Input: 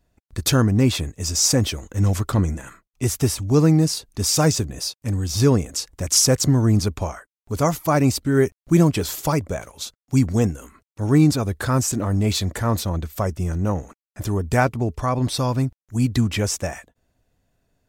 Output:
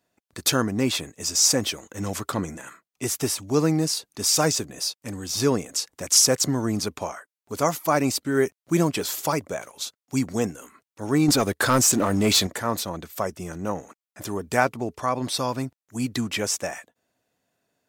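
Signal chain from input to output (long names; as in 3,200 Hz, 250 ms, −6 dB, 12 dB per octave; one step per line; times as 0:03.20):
high-pass filter 170 Hz 12 dB per octave
low-shelf EQ 360 Hz −6.5 dB
0:11.28–0:12.47: leveller curve on the samples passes 2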